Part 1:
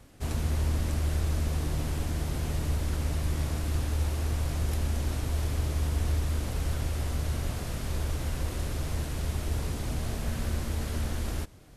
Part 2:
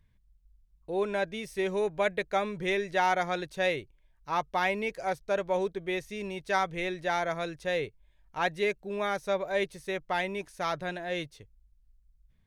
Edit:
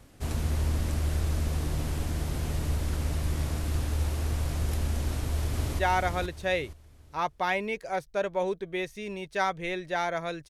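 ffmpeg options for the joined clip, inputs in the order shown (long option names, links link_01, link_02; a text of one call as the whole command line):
ffmpeg -i cue0.wav -i cue1.wav -filter_complex "[0:a]apad=whole_dur=10.49,atrim=end=10.49,atrim=end=5.792[link_01];[1:a]atrim=start=2.928:end=7.63[link_02];[link_01][link_02]acrossfade=duration=0.004:curve1=hsin:curve2=hsin,asplit=2[link_03][link_04];[link_04]afade=type=in:start_time=5.06:duration=0.01,afade=type=out:start_time=5.79:duration=0.01,aecho=0:1:470|940|1410|1880:0.595662|0.178699|0.0536096|0.0160829[link_05];[link_03][link_05]amix=inputs=2:normalize=0" out.wav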